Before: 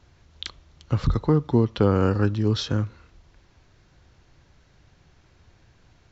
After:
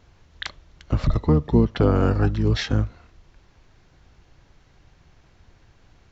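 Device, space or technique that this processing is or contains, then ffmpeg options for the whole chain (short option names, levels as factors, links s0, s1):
octave pedal: -filter_complex "[0:a]asplit=2[s0][s1];[s1]asetrate=22050,aresample=44100,atempo=2,volume=0.794[s2];[s0][s2]amix=inputs=2:normalize=0,asettb=1/sr,asplit=3[s3][s4][s5];[s3]atrim=end=1.094[s6];[s4]atrim=start=1.09:end=1.62,asetpts=PTS-STARTPTS,afade=t=in:d=0.004:c=qsin,afade=t=out:st=0.526:d=0.004:c=qsin,bandreject=f=1500:w=7.8[s7];[s5]atrim=start=1.616[s8];[s6][s7]acrossfade=d=0.004:c1=hsin:c2=qsin[s9];[s9][s8]acrossfade=d=0.004:c1=qsin:c2=hsin"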